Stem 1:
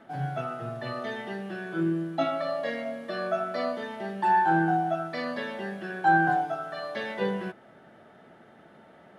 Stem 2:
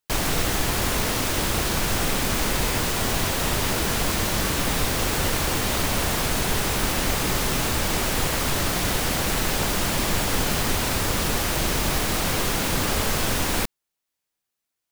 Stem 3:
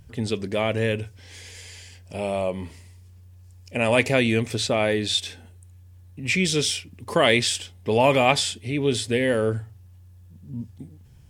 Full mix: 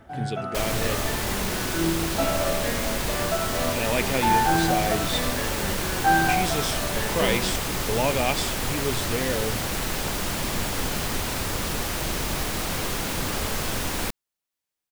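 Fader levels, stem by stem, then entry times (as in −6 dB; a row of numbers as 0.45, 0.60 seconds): +1.0, −4.0, −6.5 decibels; 0.00, 0.45, 0.00 seconds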